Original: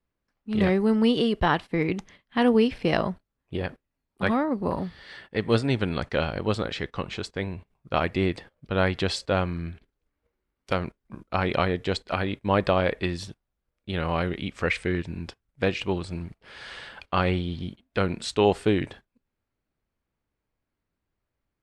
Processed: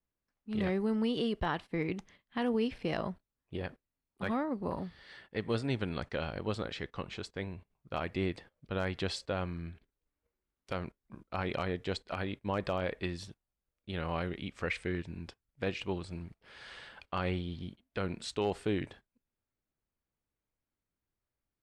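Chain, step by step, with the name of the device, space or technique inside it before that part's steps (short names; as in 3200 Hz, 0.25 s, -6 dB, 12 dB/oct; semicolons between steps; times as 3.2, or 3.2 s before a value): clipper into limiter (hard clip -10 dBFS, distortion -35 dB; limiter -13.5 dBFS, peak gain reduction 3.5 dB); gain -8.5 dB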